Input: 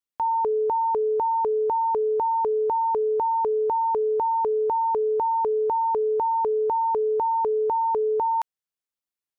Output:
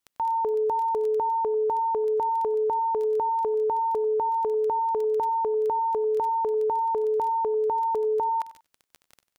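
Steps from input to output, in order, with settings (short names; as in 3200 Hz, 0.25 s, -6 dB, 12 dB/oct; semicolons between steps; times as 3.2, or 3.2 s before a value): limiter -30 dBFS, peak gain reduction 10 dB; crackle 10/s -39 dBFS; feedback echo 95 ms, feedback 20%, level -17 dB; gain +8 dB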